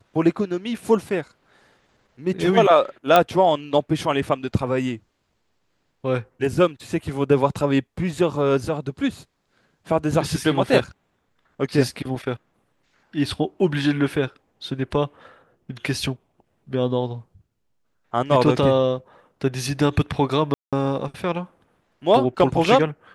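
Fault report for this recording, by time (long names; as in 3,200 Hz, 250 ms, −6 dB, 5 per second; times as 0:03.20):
0:03.16: click −3 dBFS
0:20.54–0:20.73: drop-out 186 ms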